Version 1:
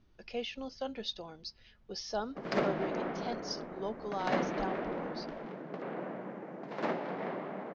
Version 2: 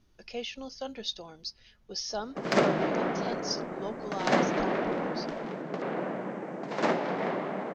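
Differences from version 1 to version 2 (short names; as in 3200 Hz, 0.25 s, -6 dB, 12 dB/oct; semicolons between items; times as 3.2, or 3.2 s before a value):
background +6.5 dB; master: remove air absorption 140 m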